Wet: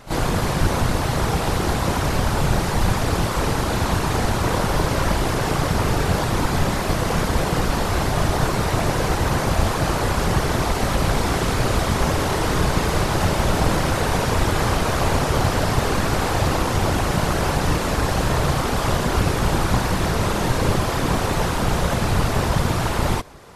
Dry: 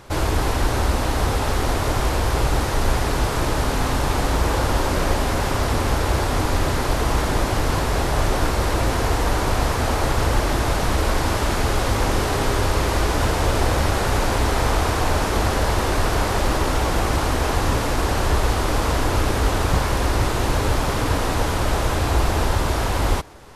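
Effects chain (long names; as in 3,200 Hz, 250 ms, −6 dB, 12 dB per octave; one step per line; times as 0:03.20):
random phases in short frames
echo ahead of the sound 34 ms −12.5 dB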